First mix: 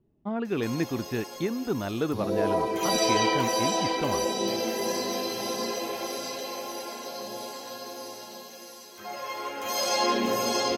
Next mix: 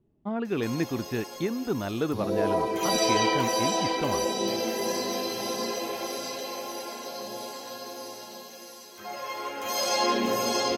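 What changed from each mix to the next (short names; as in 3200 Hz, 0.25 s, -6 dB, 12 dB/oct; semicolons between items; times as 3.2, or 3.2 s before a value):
none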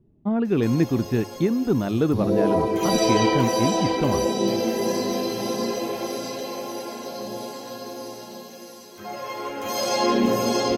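speech: add notches 50/100 Hz; master: add low shelf 440 Hz +11.5 dB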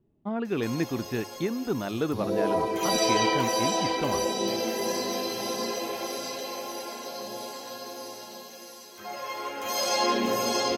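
master: add low shelf 440 Hz -11.5 dB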